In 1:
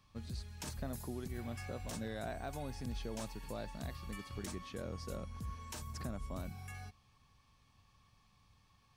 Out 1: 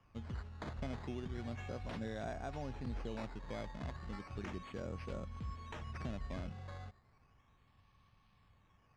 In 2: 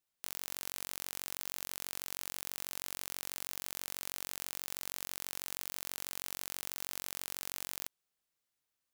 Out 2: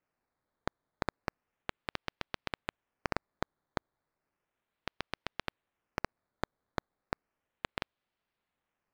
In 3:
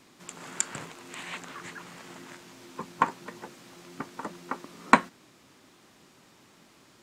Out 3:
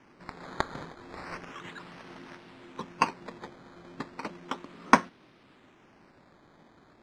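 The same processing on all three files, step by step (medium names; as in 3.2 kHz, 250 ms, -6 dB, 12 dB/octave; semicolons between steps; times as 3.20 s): decimation with a swept rate 11×, swing 100% 0.34 Hz; distance through air 120 m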